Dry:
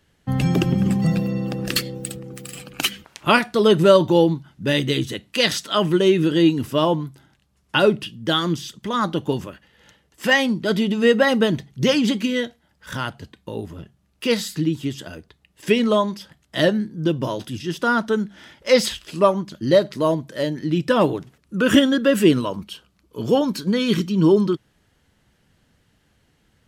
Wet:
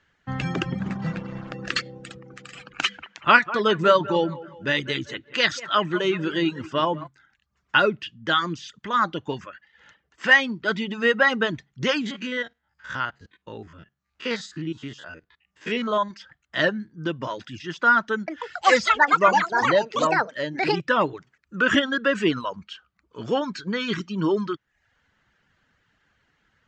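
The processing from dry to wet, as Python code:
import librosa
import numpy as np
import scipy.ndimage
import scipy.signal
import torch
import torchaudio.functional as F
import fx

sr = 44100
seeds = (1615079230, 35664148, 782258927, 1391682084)

y = fx.backlash(x, sr, play_db=-24.0, at=(0.79, 1.53))
y = fx.echo_wet_lowpass(y, sr, ms=188, feedback_pct=36, hz=2400.0, wet_db=-13, at=(2.86, 7.06), fade=0.02)
y = fx.spec_steps(y, sr, hold_ms=50, at=(12.01, 16.11))
y = fx.echo_pitch(y, sr, ms=138, semitones=7, count=3, db_per_echo=-3.0, at=(18.14, 21.92))
y = scipy.signal.sosfilt(scipy.signal.ellip(4, 1.0, 50, 7100.0, 'lowpass', fs=sr, output='sos'), y)
y = fx.dereverb_blind(y, sr, rt60_s=0.51)
y = fx.peak_eq(y, sr, hz=1500.0, db=13.0, octaves=1.6)
y = y * librosa.db_to_amplitude(-7.5)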